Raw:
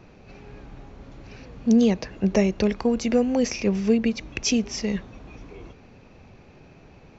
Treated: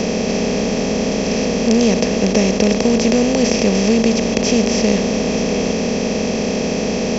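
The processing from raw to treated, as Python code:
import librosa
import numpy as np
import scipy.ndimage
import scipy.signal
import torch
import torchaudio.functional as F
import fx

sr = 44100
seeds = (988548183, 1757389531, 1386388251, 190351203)

y = fx.bin_compress(x, sr, power=0.2)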